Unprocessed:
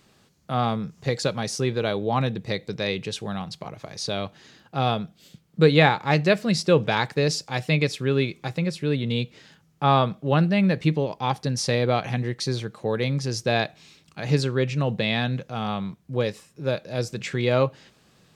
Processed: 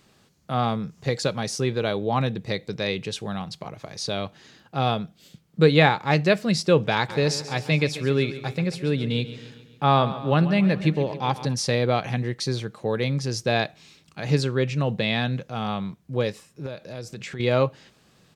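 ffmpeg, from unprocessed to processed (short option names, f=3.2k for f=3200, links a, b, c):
-filter_complex "[0:a]asplit=3[a][b][c];[a]afade=t=out:st=7.08:d=0.02[d];[b]aecho=1:1:137|274|411|548|685|822:0.2|0.11|0.0604|0.0332|0.0183|0.01,afade=t=in:st=7.08:d=0.02,afade=t=out:st=11.53:d=0.02[e];[c]afade=t=in:st=11.53:d=0.02[f];[d][e][f]amix=inputs=3:normalize=0,asettb=1/sr,asplit=3[g][h][i];[g]atrim=end=16.664[j];[h]atrim=start=16.66:end=17.4,asetpts=PTS-STARTPTS,afade=t=in:d=0.004:c=qsin,afade=t=out:st=0.736:d=0.004:c=qsin,acompressor=threshold=-33dB:ratio=3:attack=3.2:release=140:knee=1:detection=peak[k];[i]atrim=start=17.396[l];[j][k]acrossfade=d=0.004:c1=hsin:c2=qsin[m];[m][l]acrossfade=d=0.004:c1=qsin:c2=hsin"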